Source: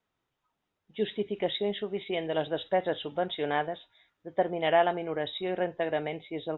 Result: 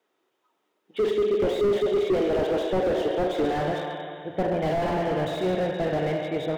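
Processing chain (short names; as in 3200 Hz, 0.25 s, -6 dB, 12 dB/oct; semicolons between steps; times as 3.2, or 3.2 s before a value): high-pass sweep 360 Hz -> 100 Hz, 3.24–3.8; Schroeder reverb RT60 2.4 s, combs from 29 ms, DRR 4.5 dB; slew limiter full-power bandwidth 22 Hz; gain +6 dB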